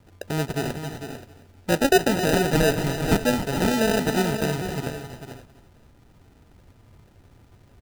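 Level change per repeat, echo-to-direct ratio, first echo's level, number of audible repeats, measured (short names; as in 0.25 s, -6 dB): no steady repeat, -6.0 dB, -10.0 dB, 5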